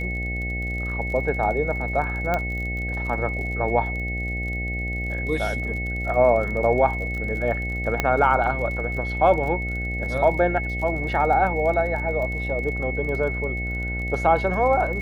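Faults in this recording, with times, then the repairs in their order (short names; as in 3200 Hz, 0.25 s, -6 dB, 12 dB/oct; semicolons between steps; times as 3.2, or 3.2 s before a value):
buzz 60 Hz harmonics 13 -29 dBFS
crackle 37/s -32 dBFS
tone 2200 Hz -29 dBFS
2.34 pop -11 dBFS
8 pop -7 dBFS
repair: de-click; notch 2200 Hz, Q 30; de-hum 60 Hz, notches 13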